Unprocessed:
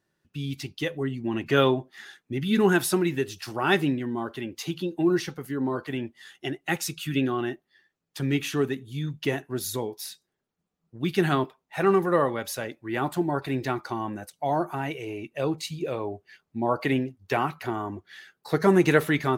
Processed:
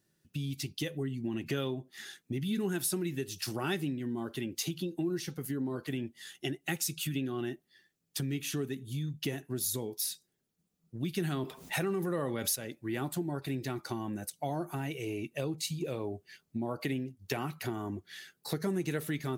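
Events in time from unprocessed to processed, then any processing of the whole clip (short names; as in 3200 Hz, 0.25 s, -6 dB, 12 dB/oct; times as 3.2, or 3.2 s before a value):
11.17–12.56 fast leveller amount 50%
whole clip: EQ curve 150 Hz 0 dB, 990 Hz -15 dB, 9800 Hz 0 dB; compressor 4:1, threshold -38 dBFS; low shelf 130 Hz -10 dB; gain +8 dB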